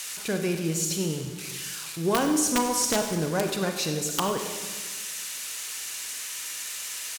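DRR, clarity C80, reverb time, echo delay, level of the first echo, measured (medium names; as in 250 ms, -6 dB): 4.5 dB, 7.5 dB, 1.5 s, 97 ms, -15.5 dB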